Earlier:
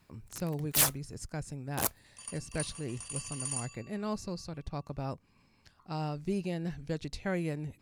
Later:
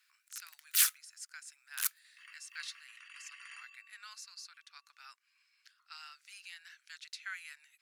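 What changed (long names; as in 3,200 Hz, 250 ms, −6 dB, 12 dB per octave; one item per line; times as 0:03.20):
second sound: add low-pass with resonance 2,000 Hz, resonance Q 2.7
master: add elliptic high-pass filter 1,400 Hz, stop band 70 dB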